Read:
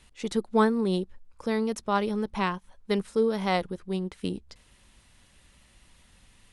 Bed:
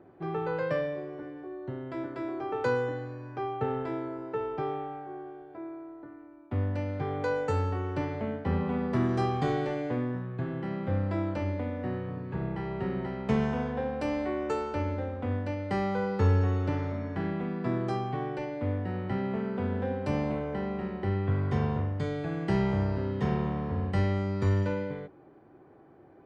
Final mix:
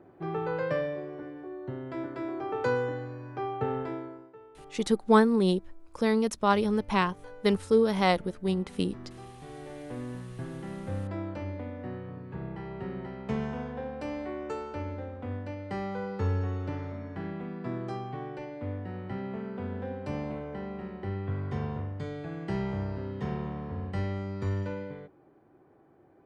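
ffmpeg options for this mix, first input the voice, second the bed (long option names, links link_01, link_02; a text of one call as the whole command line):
ffmpeg -i stem1.wav -i stem2.wav -filter_complex "[0:a]adelay=4550,volume=2dB[link_01];[1:a]volume=13.5dB,afade=type=out:start_time=3.8:duration=0.53:silence=0.11885,afade=type=in:start_time=9.45:duration=0.75:silence=0.211349[link_02];[link_01][link_02]amix=inputs=2:normalize=0" out.wav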